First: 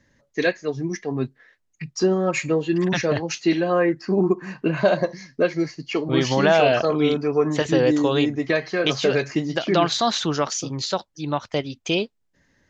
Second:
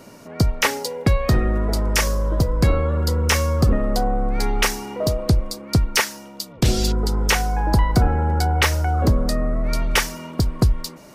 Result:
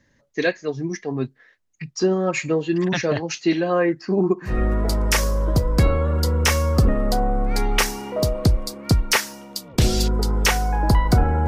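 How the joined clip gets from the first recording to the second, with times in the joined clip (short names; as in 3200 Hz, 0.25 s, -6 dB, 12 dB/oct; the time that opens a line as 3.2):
first
4.52 switch to second from 1.36 s, crossfade 0.14 s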